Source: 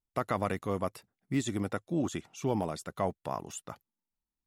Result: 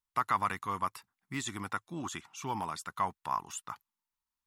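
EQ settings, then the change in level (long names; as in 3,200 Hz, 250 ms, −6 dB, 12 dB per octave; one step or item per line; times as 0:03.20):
low shelf with overshoot 760 Hz −9 dB, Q 3
+1.0 dB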